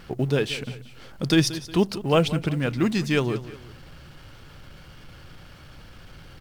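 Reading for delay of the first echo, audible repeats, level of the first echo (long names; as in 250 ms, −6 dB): 181 ms, 2, −15.5 dB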